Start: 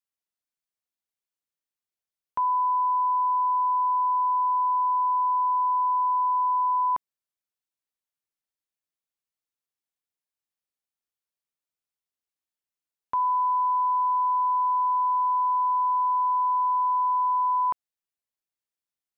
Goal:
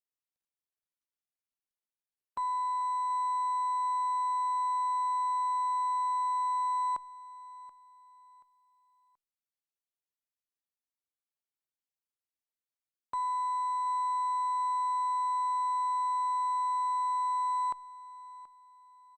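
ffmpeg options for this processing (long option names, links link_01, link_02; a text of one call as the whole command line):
ffmpeg -i in.wav -af "aeval=exprs='0.1*(cos(1*acos(clip(val(0)/0.1,-1,1)))-cos(1*PI/2))+0.00398*(cos(6*acos(clip(val(0)/0.1,-1,1)))-cos(6*PI/2))+0.00501*(cos(8*acos(clip(val(0)/0.1,-1,1)))-cos(8*PI/2))':channel_layout=same,aecho=1:1:730|1460|2190:0.106|0.0381|0.0137,volume=-8dB" -ar 48000 -c:a libopus -b:a 48k out.opus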